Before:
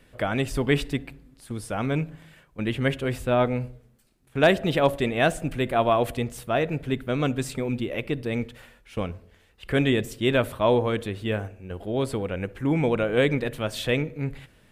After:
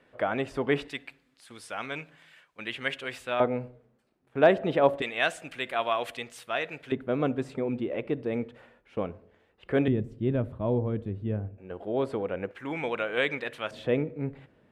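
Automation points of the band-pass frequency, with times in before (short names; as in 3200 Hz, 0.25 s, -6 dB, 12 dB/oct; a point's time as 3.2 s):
band-pass, Q 0.58
800 Hz
from 0.88 s 2600 Hz
from 3.4 s 630 Hz
from 5.02 s 2600 Hz
from 6.92 s 520 Hz
from 9.88 s 120 Hz
from 11.58 s 670 Hz
from 12.51 s 1900 Hz
from 13.71 s 410 Hz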